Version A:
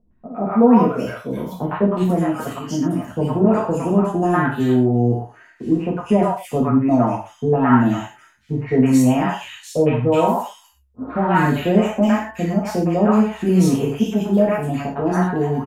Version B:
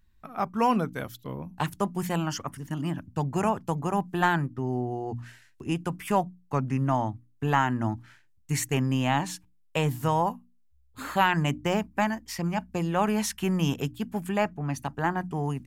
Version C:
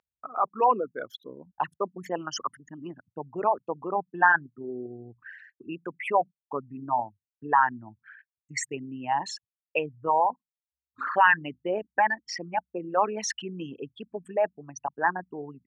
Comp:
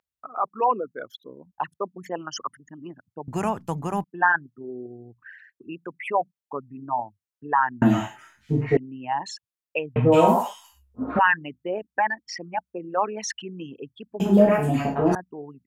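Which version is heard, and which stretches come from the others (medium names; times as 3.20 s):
C
3.28–4.04 s: from B
7.82–8.77 s: from A
9.96–11.19 s: from A
14.20–15.15 s: from A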